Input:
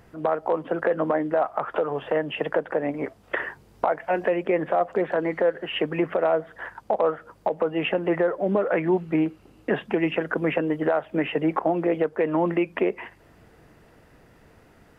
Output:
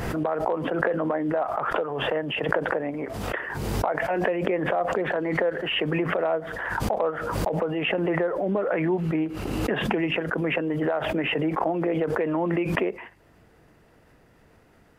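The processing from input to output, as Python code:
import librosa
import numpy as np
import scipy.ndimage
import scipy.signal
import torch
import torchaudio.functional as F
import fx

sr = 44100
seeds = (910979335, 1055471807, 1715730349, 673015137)

y = fx.pre_swell(x, sr, db_per_s=27.0)
y = y * 10.0 ** (-3.5 / 20.0)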